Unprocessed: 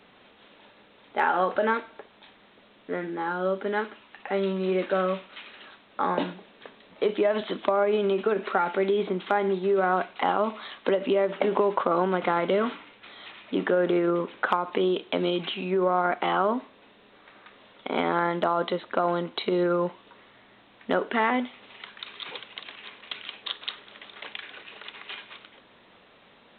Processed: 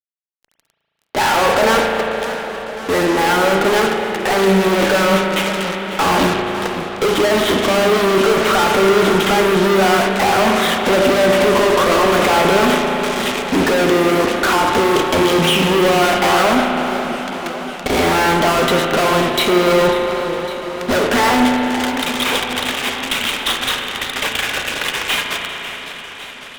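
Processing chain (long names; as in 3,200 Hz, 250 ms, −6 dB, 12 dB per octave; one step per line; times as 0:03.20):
fuzz pedal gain 46 dB, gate −44 dBFS
spring reverb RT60 3.9 s, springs 36 ms, chirp 55 ms, DRR 2 dB
feedback echo with a swinging delay time 551 ms, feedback 72%, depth 152 cents, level −14 dB
level −1 dB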